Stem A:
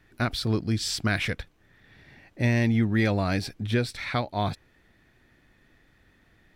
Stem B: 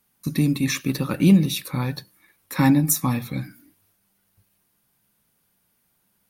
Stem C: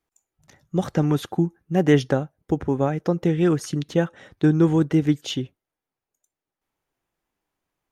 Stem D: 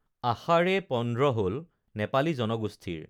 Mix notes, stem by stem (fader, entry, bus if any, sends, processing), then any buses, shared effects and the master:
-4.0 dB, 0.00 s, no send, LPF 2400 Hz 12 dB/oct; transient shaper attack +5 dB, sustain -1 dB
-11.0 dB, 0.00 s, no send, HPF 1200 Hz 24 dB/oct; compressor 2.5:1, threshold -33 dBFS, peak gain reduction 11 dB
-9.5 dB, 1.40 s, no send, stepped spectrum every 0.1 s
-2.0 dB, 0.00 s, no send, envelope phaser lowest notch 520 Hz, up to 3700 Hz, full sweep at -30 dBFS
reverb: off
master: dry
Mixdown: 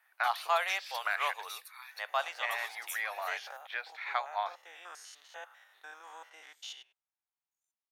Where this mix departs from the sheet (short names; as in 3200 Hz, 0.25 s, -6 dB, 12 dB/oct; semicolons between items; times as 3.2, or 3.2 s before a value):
stem D: missing envelope phaser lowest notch 520 Hz, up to 3700 Hz, full sweep at -30 dBFS; master: extra steep high-pass 740 Hz 36 dB/oct